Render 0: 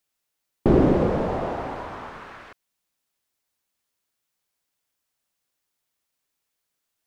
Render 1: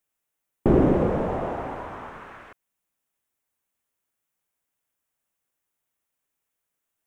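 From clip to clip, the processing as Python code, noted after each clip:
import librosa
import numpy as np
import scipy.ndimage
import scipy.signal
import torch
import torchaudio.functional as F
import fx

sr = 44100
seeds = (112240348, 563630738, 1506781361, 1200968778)

y = fx.peak_eq(x, sr, hz=4500.0, db=-10.5, octaves=0.79)
y = F.gain(torch.from_numpy(y), -1.0).numpy()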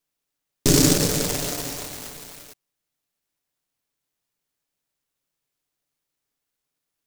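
y = x + 0.65 * np.pad(x, (int(6.9 * sr / 1000.0), 0))[:len(x)]
y = fx.noise_mod_delay(y, sr, seeds[0], noise_hz=5900.0, depth_ms=0.32)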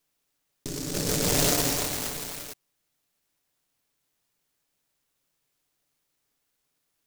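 y = fx.over_compress(x, sr, threshold_db=-27.0, ratio=-1.0)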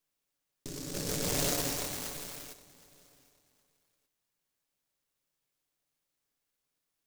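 y = fx.comb_fb(x, sr, f0_hz=550.0, decay_s=0.41, harmonics='all', damping=0.0, mix_pct=60)
y = fx.echo_feedback(y, sr, ms=766, feedback_pct=25, wet_db=-21.5)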